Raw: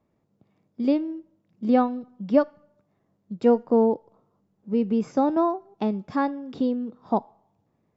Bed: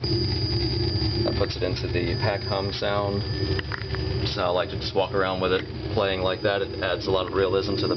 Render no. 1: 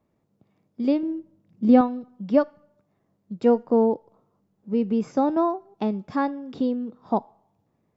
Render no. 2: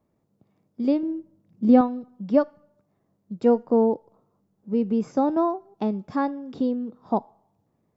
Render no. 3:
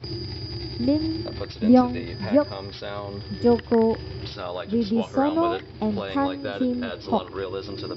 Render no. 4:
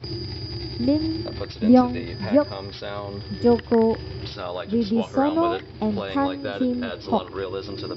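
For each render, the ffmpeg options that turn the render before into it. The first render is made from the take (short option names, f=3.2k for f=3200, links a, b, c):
-filter_complex "[0:a]asettb=1/sr,asplit=3[a][b][c];[a]atrim=end=1.034[d];[b]atrim=start=1.03:end=1.81,asetpts=PTS-STARTPTS,afade=t=in:d=0.004:c=qsin,afade=t=out:st=0.776:d=0.004:c=qsin,lowshelf=f=300:g=9[e];[c]atrim=start=1.806[f];[d][e]acrossfade=d=0.004:c1=hsin:c2=qsin[g];[g][f]acrossfade=d=0.004:c1=qsin:c2=hsin"
-af "equalizer=f=2.6k:t=o:w=1.6:g=-4"
-filter_complex "[1:a]volume=-8dB[a];[0:a][a]amix=inputs=2:normalize=0"
-af "volume=1dB"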